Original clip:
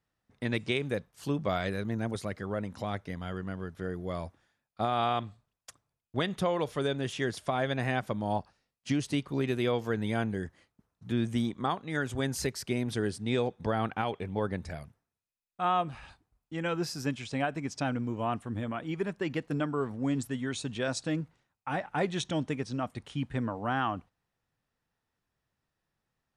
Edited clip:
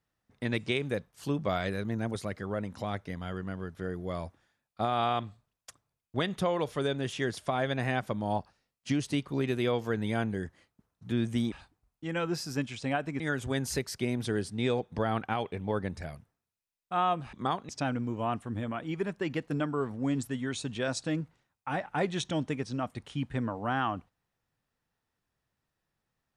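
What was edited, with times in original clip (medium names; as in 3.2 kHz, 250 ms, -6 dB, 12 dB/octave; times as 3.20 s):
11.52–11.88 s: swap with 16.01–17.69 s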